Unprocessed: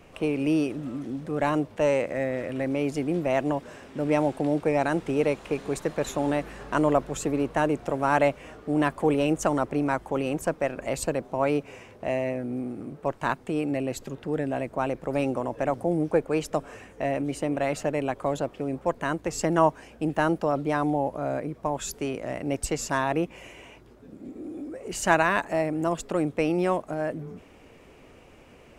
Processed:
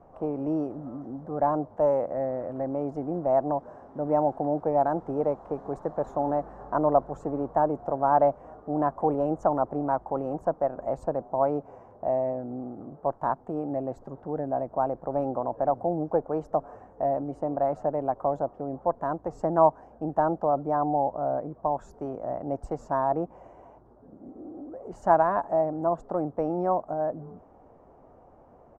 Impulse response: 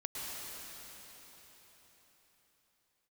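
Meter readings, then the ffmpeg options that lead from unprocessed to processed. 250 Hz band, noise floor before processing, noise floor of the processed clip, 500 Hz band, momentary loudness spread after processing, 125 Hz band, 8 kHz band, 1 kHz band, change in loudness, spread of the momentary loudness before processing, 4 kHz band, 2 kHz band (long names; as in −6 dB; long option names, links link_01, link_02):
−4.5 dB, −52 dBFS, −54 dBFS, 0.0 dB, 11 LU, −4.5 dB, below −25 dB, +2.5 dB, −1.0 dB, 9 LU, below −25 dB, −14.0 dB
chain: -af "firequalizer=gain_entry='entry(420,0);entry(730,10);entry(2500,-27);entry(5800,-20);entry(11000,-29)':delay=0.05:min_phase=1,volume=-4.5dB"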